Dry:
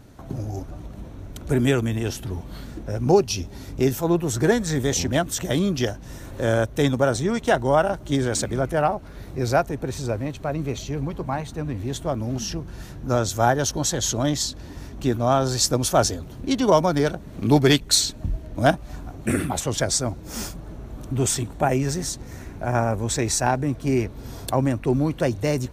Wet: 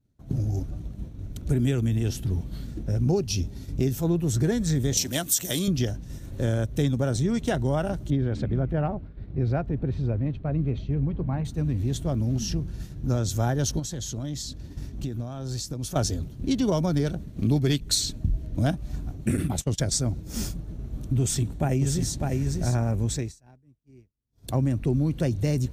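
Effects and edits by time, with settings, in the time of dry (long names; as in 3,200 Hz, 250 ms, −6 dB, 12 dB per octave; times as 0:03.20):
0:04.97–0:05.68: RIAA equalisation recording
0:08.10–0:11.45: high-frequency loss of the air 380 metres
0:13.79–0:15.96: downward compressor 12 to 1, threshold −28 dBFS
0:19.37–0:19.98: noise gate −28 dBFS, range −29 dB
0:21.21–0:22.31: delay throw 600 ms, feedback 10%, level −5.5 dB
0:23.04–0:24.58: duck −21 dB, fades 0.29 s
whole clip: downward expander −32 dBFS; drawn EQ curve 160 Hz 0 dB, 960 Hz −15 dB, 4,000 Hz −7 dB; downward compressor 3 to 1, threshold −26 dBFS; level +5 dB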